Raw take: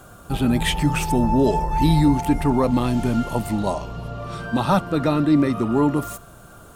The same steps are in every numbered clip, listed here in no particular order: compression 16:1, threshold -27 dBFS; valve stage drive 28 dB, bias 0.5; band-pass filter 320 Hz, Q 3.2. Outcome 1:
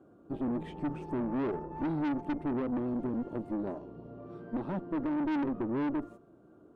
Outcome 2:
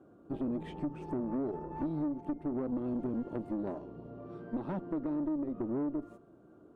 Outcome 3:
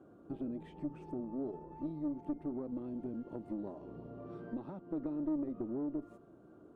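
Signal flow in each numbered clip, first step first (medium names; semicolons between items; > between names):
band-pass filter > valve stage > compression; band-pass filter > compression > valve stage; compression > band-pass filter > valve stage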